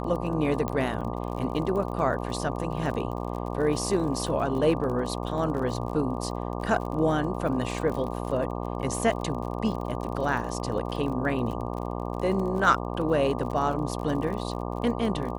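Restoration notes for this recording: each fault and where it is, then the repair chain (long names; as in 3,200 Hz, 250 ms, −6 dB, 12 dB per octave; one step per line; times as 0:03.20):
mains buzz 60 Hz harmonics 20 −32 dBFS
surface crackle 40 per second −34 dBFS
0:00.68: click −16 dBFS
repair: click removal
hum removal 60 Hz, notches 20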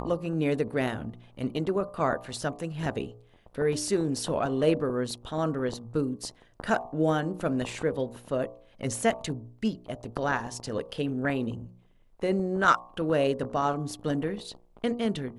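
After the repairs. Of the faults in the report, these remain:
none of them is left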